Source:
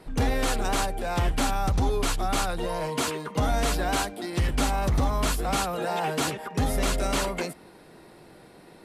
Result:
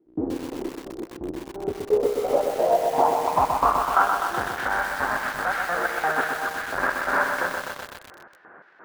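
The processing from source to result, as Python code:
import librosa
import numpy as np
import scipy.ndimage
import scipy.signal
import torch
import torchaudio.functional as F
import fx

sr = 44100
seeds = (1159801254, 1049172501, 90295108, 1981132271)

p1 = fx.halfwave_hold(x, sr)
p2 = fx.filter_lfo_bandpass(p1, sr, shape='square', hz=2.9, low_hz=860.0, high_hz=5300.0, q=1.1)
p3 = fx.low_shelf(p2, sr, hz=99.0, db=11.5, at=(2.85, 3.7))
p4 = fx.filter_sweep_lowpass(p3, sr, from_hz=330.0, to_hz=1600.0, start_s=1.38, end_s=4.33, q=7.4)
p5 = p4 + fx.echo_wet_bandpass(p4, sr, ms=184, feedback_pct=61, hz=620.0, wet_db=-16, dry=0)
y = fx.echo_crushed(p5, sr, ms=126, feedback_pct=80, bits=6, wet_db=-4.5)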